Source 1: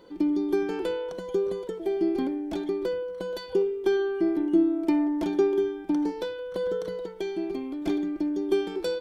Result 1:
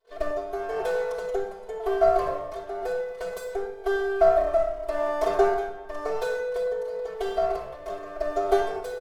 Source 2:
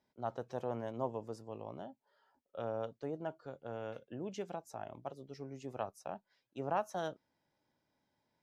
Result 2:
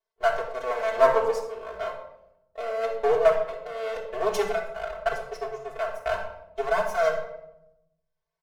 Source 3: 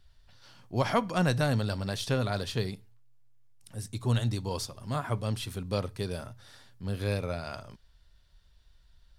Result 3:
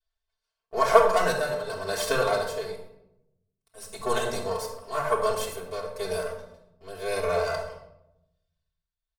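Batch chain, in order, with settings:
comb filter that takes the minimum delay 1.9 ms; gate -51 dBFS, range -27 dB; dynamic bell 3.2 kHz, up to -8 dB, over -54 dBFS, Q 1.2; vibrato 0.39 Hz 7.4 cents; resonant low shelf 380 Hz -11 dB, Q 1.5; comb 4.5 ms, depth 97%; tremolo 0.95 Hz, depth 71%; simulated room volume 2600 m³, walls furnished, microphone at 3.3 m; normalise loudness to -27 LUFS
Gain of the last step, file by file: +2.0 dB, +17.0 dB, +5.0 dB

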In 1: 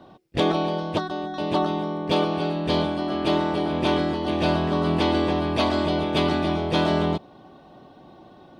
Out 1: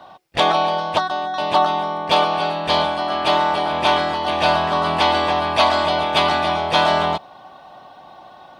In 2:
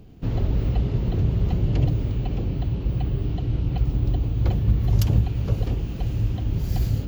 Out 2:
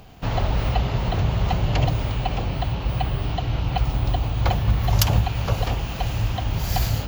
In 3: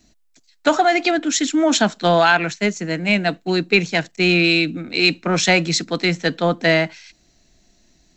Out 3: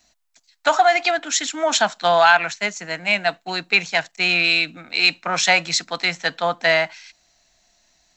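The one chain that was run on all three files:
resonant low shelf 530 Hz -12 dB, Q 1.5; peak normalisation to -2 dBFS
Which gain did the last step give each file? +8.5 dB, +12.0 dB, 0.0 dB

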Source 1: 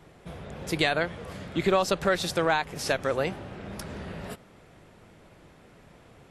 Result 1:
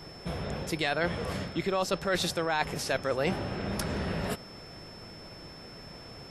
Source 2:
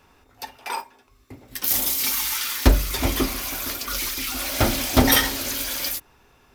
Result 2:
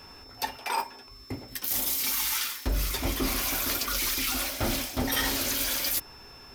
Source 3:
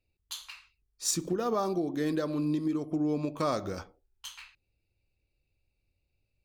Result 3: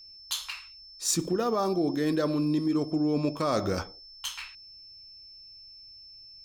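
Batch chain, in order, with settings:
reverse; compression 12:1, threshold -31 dBFS; reverse; whistle 5.3 kHz -55 dBFS; peak normalisation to -12 dBFS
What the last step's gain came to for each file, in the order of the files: +6.0 dB, +6.0 dB, +8.0 dB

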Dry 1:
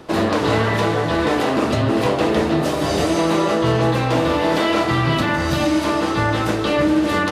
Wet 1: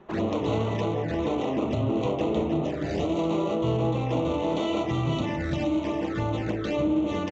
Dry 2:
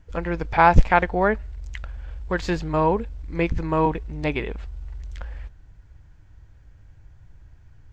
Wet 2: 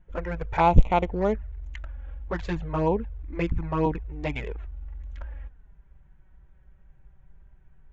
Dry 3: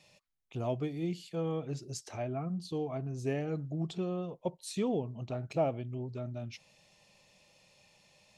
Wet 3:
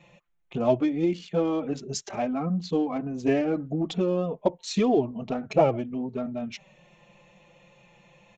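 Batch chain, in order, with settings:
local Wiener filter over 9 samples; touch-sensitive flanger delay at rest 5.8 ms, full sweep at -15 dBFS; resampled via 16 kHz; normalise loudness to -27 LUFS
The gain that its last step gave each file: -7.0 dB, -1.5 dB, +14.0 dB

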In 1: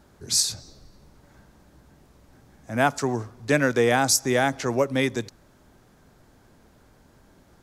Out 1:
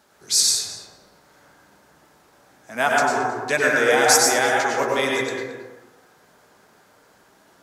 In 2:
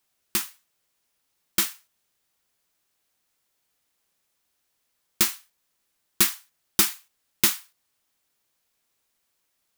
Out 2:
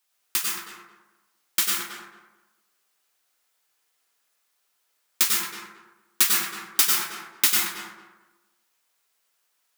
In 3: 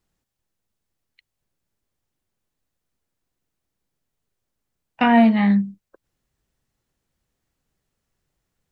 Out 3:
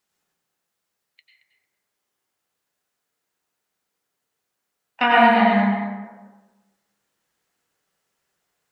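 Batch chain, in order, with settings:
high-pass 940 Hz 6 dB/octave; flange 1.1 Hz, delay 4.5 ms, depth 2.8 ms, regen -63%; on a send: tape echo 222 ms, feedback 23%, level -6 dB, low-pass 1.8 kHz; on the sum: plate-style reverb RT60 1 s, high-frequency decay 0.35×, pre-delay 85 ms, DRR -2.5 dB; peak normalisation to -3 dBFS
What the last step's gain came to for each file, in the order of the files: +7.5 dB, +5.0 dB, +7.0 dB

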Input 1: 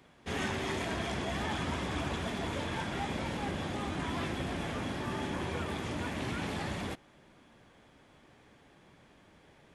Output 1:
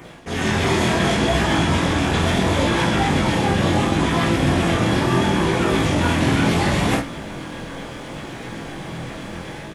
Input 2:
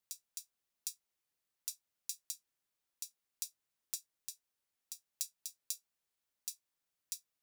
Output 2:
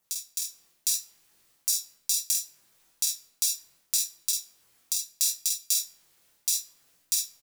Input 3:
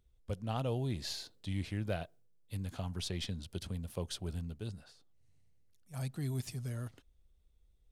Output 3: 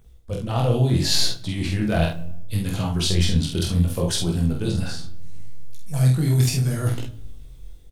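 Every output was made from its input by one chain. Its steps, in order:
LFO notch saw down 7.8 Hz 460–4800 Hz; reverse; compression 6:1, threshold -45 dBFS; reverse; simulated room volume 2600 m³, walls furnished, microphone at 0.71 m; level rider gain up to 6 dB; on a send: early reflections 47 ms -3.5 dB, 80 ms -15.5 dB; on the sum: chorus 0.71 Hz, delay 17.5 ms, depth 7.7 ms; peak normalisation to -6 dBFS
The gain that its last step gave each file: +24.0 dB, +19.5 dB, +22.0 dB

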